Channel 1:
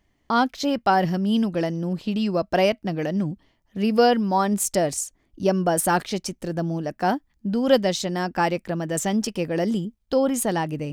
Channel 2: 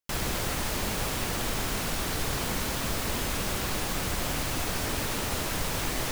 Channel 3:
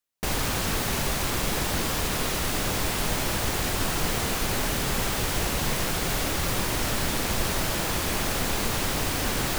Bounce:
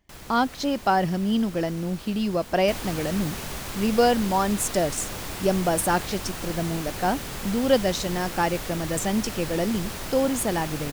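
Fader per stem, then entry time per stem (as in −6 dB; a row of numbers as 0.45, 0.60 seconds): −2.0, −13.0, −7.5 decibels; 0.00, 0.00, 2.45 seconds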